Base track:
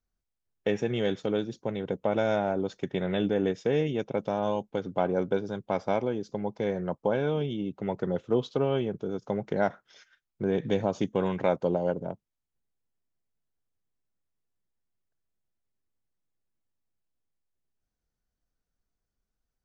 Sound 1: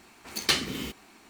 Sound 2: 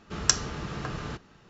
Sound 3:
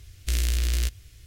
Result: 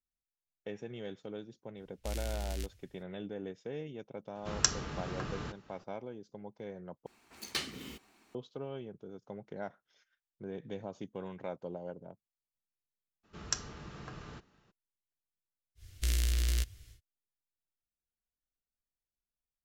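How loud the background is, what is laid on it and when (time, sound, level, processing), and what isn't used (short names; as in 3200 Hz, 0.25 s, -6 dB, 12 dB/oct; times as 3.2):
base track -15 dB
1.77 add 3 -13.5 dB + three-band expander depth 40%
4.35 add 2 -5 dB
7.06 replace with 1 -11.5 dB
13.23 add 2 -12 dB, fades 0.02 s
15.75 add 3 -5.5 dB, fades 0.10 s + notch 2500 Hz, Q 23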